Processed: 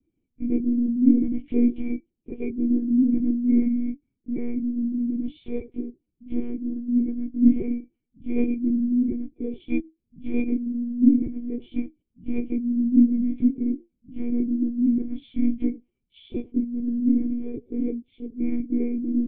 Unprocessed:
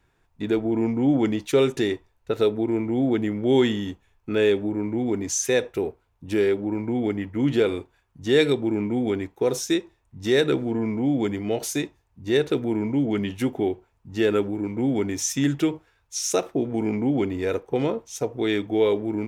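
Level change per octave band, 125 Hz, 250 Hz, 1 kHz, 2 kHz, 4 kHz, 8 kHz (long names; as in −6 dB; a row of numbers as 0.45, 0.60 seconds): −12.5 dB, +3.0 dB, below −20 dB, below −15 dB, below −20 dB, below −40 dB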